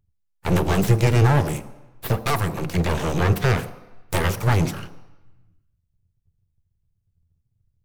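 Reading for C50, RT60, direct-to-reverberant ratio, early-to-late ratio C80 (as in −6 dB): 14.5 dB, 1.0 s, 10.5 dB, 16.0 dB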